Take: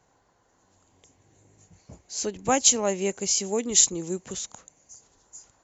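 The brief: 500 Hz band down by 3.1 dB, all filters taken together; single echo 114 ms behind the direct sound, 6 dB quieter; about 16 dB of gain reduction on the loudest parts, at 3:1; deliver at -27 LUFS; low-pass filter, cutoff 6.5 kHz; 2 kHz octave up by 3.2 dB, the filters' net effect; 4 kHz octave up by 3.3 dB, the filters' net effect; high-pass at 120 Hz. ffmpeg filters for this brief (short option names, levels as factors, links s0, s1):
-af "highpass=120,lowpass=6500,equalizer=f=500:t=o:g=-4,equalizer=f=2000:t=o:g=3,equalizer=f=4000:t=o:g=4.5,acompressor=threshold=0.0141:ratio=3,aecho=1:1:114:0.501,volume=2.99"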